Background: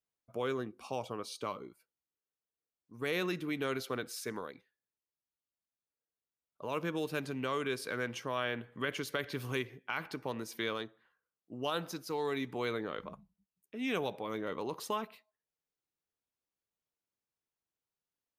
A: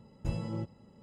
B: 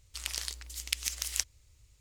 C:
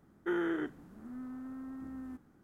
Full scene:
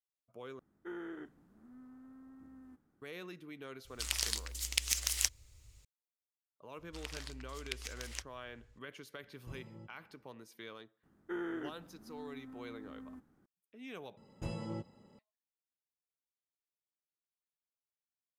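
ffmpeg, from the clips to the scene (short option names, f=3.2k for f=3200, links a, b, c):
-filter_complex "[3:a]asplit=2[a][b];[2:a]asplit=2[c][d];[1:a]asplit=2[e][f];[0:a]volume=-13dB[g];[c]acontrast=73[h];[d]lowpass=f=1.5k:p=1[i];[f]lowshelf=f=150:g=-10.5[j];[g]asplit=3[k][l][m];[k]atrim=end=0.594[n];[a]atrim=end=2.43,asetpts=PTS-STARTPTS,volume=-11.5dB[o];[l]atrim=start=3.016:end=14.174[p];[j]atrim=end=1.02,asetpts=PTS-STARTPTS,volume=-1dB[q];[m]atrim=start=15.186[r];[h]atrim=end=2,asetpts=PTS-STARTPTS,volume=-5dB,afade=t=in:d=0.004:c=hsin,afade=t=out:st=1.996:d=0.004:c=hsin,adelay=169785S[s];[i]atrim=end=2,asetpts=PTS-STARTPTS,volume=-1.5dB,afade=t=in:d=0.004:c=hsin,afade=t=out:st=1.996:d=0.004:c=hsin,adelay=6790[t];[e]atrim=end=1.02,asetpts=PTS-STARTPTS,volume=-16.5dB,afade=t=in:d=0.004:c=hsin,afade=t=out:st=1.016:d=0.004:c=hsin,adelay=406602S[u];[b]atrim=end=2.43,asetpts=PTS-STARTPTS,volume=-6.5dB,afade=t=in:d=0.004:c=hsin,afade=t=out:st=2.426:d=0.004:c=hsin,adelay=11030[v];[n][o]acrossfade=d=0.004:c1=hsin:c2=hsin[w];[w][p]acrossfade=d=0.004:c1=hsin:c2=hsin[x];[x][q]acrossfade=d=0.004:c1=hsin:c2=hsin[y];[y][r]acrossfade=d=0.004:c1=hsin:c2=hsin[z];[z][s][t][u][v]amix=inputs=5:normalize=0"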